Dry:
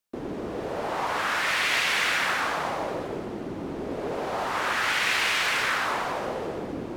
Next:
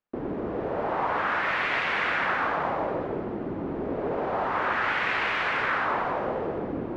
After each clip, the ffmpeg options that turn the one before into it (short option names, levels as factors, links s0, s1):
-af "lowpass=1800,volume=1.26"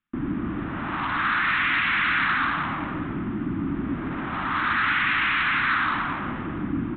-af "aresample=8000,asoftclip=type=tanh:threshold=0.075,aresample=44100,firequalizer=gain_entry='entry(300,0);entry(450,-26);entry(1200,-1)':delay=0.05:min_phase=1,volume=2.51"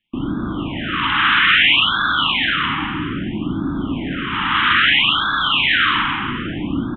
-filter_complex "[0:a]lowpass=f=3100:t=q:w=5.9,asplit=2[s0][s1];[s1]adelay=37,volume=0.473[s2];[s0][s2]amix=inputs=2:normalize=0,afftfilt=real='re*(1-between(b*sr/1024,530*pow(2400/530,0.5+0.5*sin(2*PI*0.61*pts/sr))/1.41,530*pow(2400/530,0.5+0.5*sin(2*PI*0.61*pts/sr))*1.41))':imag='im*(1-between(b*sr/1024,530*pow(2400/530,0.5+0.5*sin(2*PI*0.61*pts/sr))/1.41,530*pow(2400/530,0.5+0.5*sin(2*PI*0.61*pts/sr))*1.41))':win_size=1024:overlap=0.75,volume=1.68"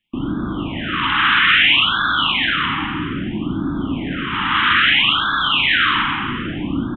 -af "aecho=1:1:92:0.158"